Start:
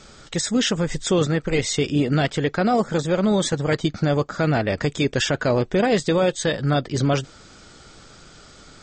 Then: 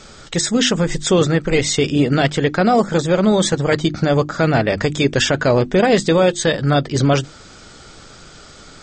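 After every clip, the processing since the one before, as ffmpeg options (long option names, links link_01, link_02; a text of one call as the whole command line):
ffmpeg -i in.wav -af "bandreject=frequency=50:width_type=h:width=6,bandreject=frequency=100:width_type=h:width=6,bandreject=frequency=150:width_type=h:width=6,bandreject=frequency=200:width_type=h:width=6,bandreject=frequency=250:width_type=h:width=6,bandreject=frequency=300:width_type=h:width=6,bandreject=frequency=350:width_type=h:width=6,volume=5.5dB" out.wav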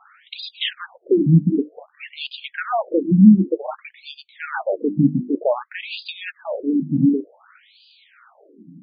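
ffmpeg -i in.wav -af "bass=frequency=250:gain=15,treble=frequency=4000:gain=-4,afftfilt=real='re*between(b*sr/1024,220*pow(3500/220,0.5+0.5*sin(2*PI*0.54*pts/sr))/1.41,220*pow(3500/220,0.5+0.5*sin(2*PI*0.54*pts/sr))*1.41)':imag='im*between(b*sr/1024,220*pow(3500/220,0.5+0.5*sin(2*PI*0.54*pts/sr))/1.41,220*pow(3500/220,0.5+0.5*sin(2*PI*0.54*pts/sr))*1.41)':win_size=1024:overlap=0.75,volume=-2dB" out.wav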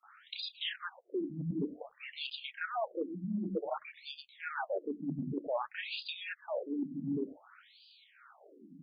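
ffmpeg -i in.wav -filter_complex "[0:a]areverse,acompressor=threshold=-24dB:ratio=16,areverse,acrossover=split=200|2400[link_01][link_02][link_03];[link_02]adelay=30[link_04];[link_01]adelay=120[link_05];[link_05][link_04][link_03]amix=inputs=3:normalize=0,volume=-6.5dB" out.wav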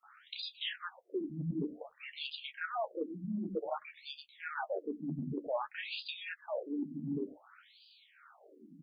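ffmpeg -i in.wav -filter_complex "[0:a]asplit=2[link_01][link_02];[link_02]adelay=13,volume=-10dB[link_03];[link_01][link_03]amix=inputs=2:normalize=0,volume=-1.5dB" out.wav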